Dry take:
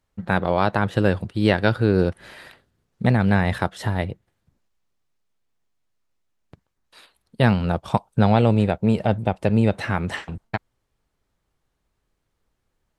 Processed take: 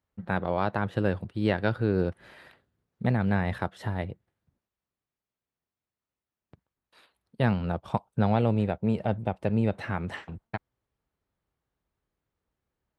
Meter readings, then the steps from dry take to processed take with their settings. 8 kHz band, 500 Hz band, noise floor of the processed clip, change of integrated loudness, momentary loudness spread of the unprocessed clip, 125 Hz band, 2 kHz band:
n/a, -7.0 dB, under -85 dBFS, -7.0 dB, 11 LU, -7.0 dB, -8.0 dB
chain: HPF 47 Hz; bell 7900 Hz -7.5 dB 2.1 oct; gain -7 dB

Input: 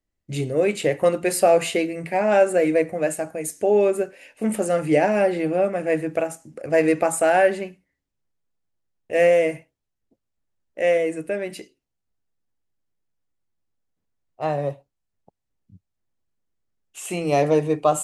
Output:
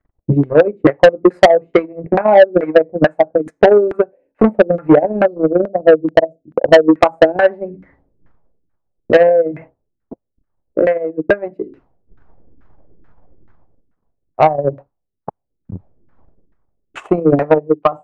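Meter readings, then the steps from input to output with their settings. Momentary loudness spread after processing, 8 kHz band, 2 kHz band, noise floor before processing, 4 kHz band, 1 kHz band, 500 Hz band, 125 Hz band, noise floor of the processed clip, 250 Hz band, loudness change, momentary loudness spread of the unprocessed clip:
10 LU, under -10 dB, +6.5 dB, -80 dBFS, +7.0 dB, +8.0 dB, +8.5 dB, +8.0 dB, -74 dBFS, +9.5 dB, +8.0 dB, 12 LU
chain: ending faded out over 0.59 s; notch 2800 Hz, Q 20; spectral delete 5.25–6.93, 750–4100 Hz; transient shaper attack +11 dB, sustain -4 dB; in parallel at -2.5 dB: compressor, threshold -23 dBFS, peak gain reduction 19.5 dB; on the sum: transient shaper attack +7 dB, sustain -8 dB; reverse; upward compressor, threshold -22 dBFS; reverse; LFO low-pass saw down 2.3 Hz 270–1600 Hz; soft clip -1 dBFS, distortion -6 dB

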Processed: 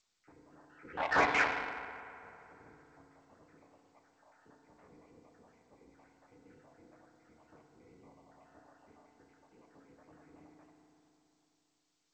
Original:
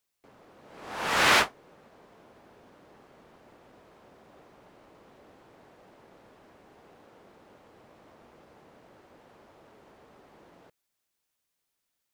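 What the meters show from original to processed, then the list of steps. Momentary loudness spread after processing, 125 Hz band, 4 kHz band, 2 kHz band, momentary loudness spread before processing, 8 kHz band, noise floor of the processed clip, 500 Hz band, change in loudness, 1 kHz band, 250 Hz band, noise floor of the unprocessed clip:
20 LU, -6.5 dB, -16.0 dB, -5.5 dB, 15 LU, -17.5 dB, -79 dBFS, -4.0 dB, -8.5 dB, -4.5 dB, -4.0 dB, -82 dBFS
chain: random spectral dropouts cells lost 73%; notches 60/120/180/240/300/360/420/480/540 Hz; dynamic EQ 1400 Hz, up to -4 dB, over -53 dBFS, Q 7; added harmonics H 5 -10 dB, 7 -37 dB, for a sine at -15.5 dBFS; mistuned SSB -130 Hz 210–2500 Hz; FDN reverb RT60 3.2 s, high-frequency decay 0.6×, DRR 0.5 dB; added harmonics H 7 -22 dB, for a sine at -12.5 dBFS; gain -4 dB; G.722 64 kbps 16000 Hz

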